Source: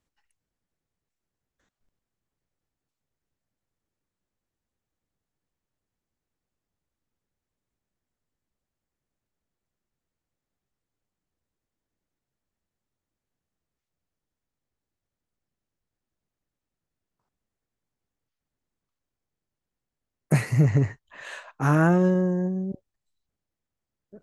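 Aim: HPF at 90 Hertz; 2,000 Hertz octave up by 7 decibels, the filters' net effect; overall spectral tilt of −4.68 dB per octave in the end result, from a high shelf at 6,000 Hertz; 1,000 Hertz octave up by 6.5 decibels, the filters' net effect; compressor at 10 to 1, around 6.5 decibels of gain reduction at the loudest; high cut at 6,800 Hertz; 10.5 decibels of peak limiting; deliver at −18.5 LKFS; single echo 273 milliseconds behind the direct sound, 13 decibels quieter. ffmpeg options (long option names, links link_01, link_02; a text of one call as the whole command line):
ffmpeg -i in.wav -af "highpass=90,lowpass=6800,equalizer=frequency=1000:width_type=o:gain=6.5,equalizer=frequency=2000:width_type=o:gain=7,highshelf=frequency=6000:gain=-3,acompressor=threshold=-19dB:ratio=10,alimiter=limit=-19dB:level=0:latency=1,aecho=1:1:273:0.224,volume=11dB" out.wav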